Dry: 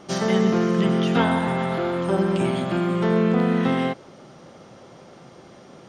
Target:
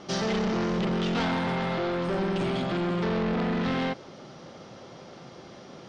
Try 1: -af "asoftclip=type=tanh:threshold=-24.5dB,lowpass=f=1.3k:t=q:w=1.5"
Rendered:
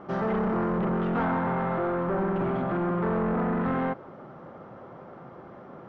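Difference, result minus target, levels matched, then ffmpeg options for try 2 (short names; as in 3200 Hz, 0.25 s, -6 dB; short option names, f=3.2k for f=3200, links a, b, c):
4000 Hz band -18.5 dB
-af "asoftclip=type=tanh:threshold=-24.5dB,lowpass=f=5k:t=q:w=1.5"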